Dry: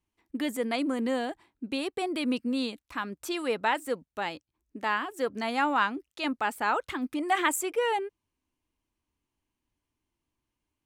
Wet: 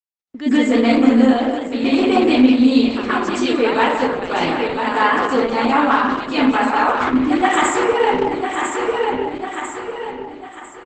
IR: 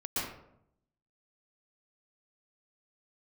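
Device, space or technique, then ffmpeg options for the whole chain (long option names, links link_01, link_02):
speakerphone in a meeting room: -filter_complex "[0:a]asplit=3[link_01][link_02][link_03];[link_01]afade=type=out:start_time=1.29:duration=0.02[link_04];[link_02]bandreject=frequency=4900:width=22,afade=type=in:start_time=1.29:duration=0.02,afade=type=out:start_time=2.45:duration=0.02[link_05];[link_03]afade=type=in:start_time=2.45:duration=0.02[link_06];[link_04][link_05][link_06]amix=inputs=3:normalize=0,aecho=1:1:998|1996|2994|3992:0.299|0.102|0.0345|0.0117[link_07];[1:a]atrim=start_sample=2205[link_08];[link_07][link_08]afir=irnorm=-1:irlink=0,asplit=2[link_09][link_10];[link_10]adelay=180,highpass=300,lowpass=3400,asoftclip=type=hard:threshold=-16.5dB,volume=-7dB[link_11];[link_09][link_11]amix=inputs=2:normalize=0,dynaudnorm=framelen=260:gausssize=3:maxgain=15.5dB,agate=range=-33dB:threshold=-42dB:ratio=16:detection=peak,volume=-1dB" -ar 48000 -c:a libopus -b:a 12k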